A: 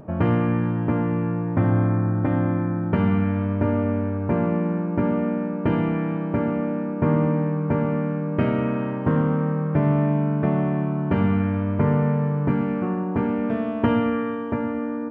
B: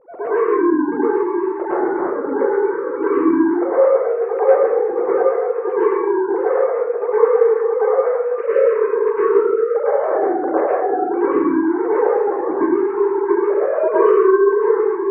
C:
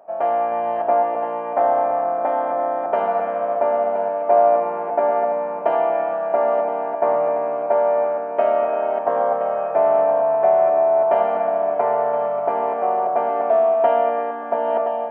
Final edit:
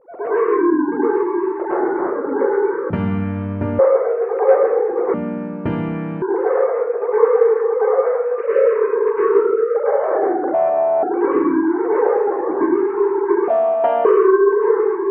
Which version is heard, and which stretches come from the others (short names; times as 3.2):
B
2.9–3.79 from A
5.14–6.22 from A
10.54–11.03 from C
13.48–14.05 from C